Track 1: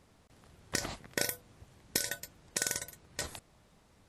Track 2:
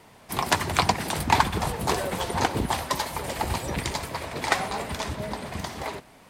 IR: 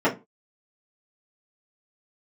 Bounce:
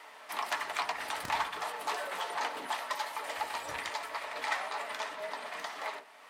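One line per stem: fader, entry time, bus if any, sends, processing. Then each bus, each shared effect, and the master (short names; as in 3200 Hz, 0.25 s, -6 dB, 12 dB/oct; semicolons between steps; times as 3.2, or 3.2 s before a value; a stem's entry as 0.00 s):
-8.5 dB, 0.50 s, muted 1.65–3.37, no send, spectral whitening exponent 0.3; bell 69 Hz +9 dB 2.3 oct
-3.0 dB, 0.00 s, send -19.5 dB, soft clip -17.5 dBFS, distortion -11 dB; HPF 1100 Hz 12 dB/oct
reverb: on, RT60 0.25 s, pre-delay 3 ms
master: high shelf 4400 Hz -11.5 dB; three-band squash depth 40%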